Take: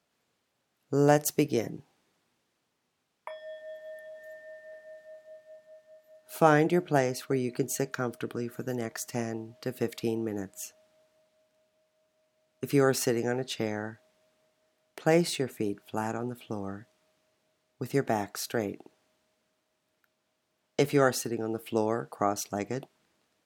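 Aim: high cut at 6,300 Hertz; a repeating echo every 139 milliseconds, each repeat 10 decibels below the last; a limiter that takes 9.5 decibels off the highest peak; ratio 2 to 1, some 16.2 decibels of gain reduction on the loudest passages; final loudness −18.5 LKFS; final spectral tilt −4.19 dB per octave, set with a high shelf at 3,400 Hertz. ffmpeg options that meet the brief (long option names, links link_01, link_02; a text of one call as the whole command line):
ffmpeg -i in.wav -af "lowpass=6300,highshelf=frequency=3400:gain=6,acompressor=threshold=-46dB:ratio=2,alimiter=level_in=6.5dB:limit=-24dB:level=0:latency=1,volume=-6.5dB,aecho=1:1:139|278|417|556:0.316|0.101|0.0324|0.0104,volume=26dB" out.wav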